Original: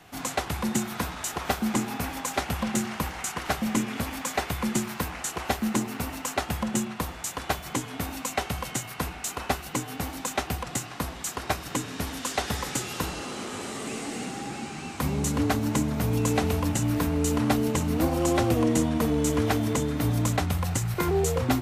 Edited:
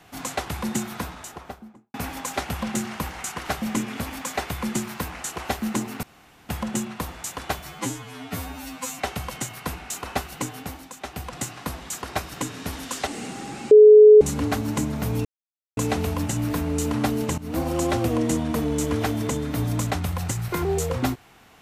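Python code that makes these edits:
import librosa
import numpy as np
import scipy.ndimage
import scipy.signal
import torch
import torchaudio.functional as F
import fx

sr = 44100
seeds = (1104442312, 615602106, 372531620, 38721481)

y = fx.studio_fade_out(x, sr, start_s=0.81, length_s=1.13)
y = fx.edit(y, sr, fx.room_tone_fill(start_s=6.03, length_s=0.46),
    fx.stretch_span(start_s=7.67, length_s=0.66, factor=2.0),
    fx.fade_down_up(start_s=9.84, length_s=0.9, db=-10.0, fade_s=0.43),
    fx.cut(start_s=12.41, length_s=1.64),
    fx.bleep(start_s=14.69, length_s=0.5, hz=425.0, db=-6.0),
    fx.insert_silence(at_s=16.23, length_s=0.52),
    fx.fade_in_from(start_s=17.84, length_s=0.25, floor_db=-16.5), tone=tone)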